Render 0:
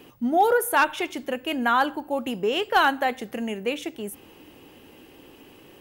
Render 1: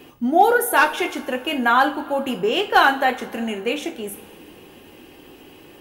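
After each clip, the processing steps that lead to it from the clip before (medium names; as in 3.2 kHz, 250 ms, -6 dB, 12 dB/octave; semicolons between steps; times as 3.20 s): two-slope reverb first 0.28 s, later 2.9 s, from -21 dB, DRR 3.5 dB; trim +3 dB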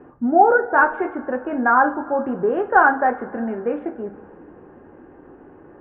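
elliptic low-pass 1.6 kHz, stop band 80 dB; trim +1.5 dB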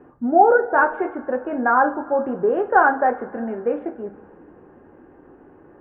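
dynamic bell 530 Hz, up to +5 dB, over -30 dBFS, Q 1.2; trim -3 dB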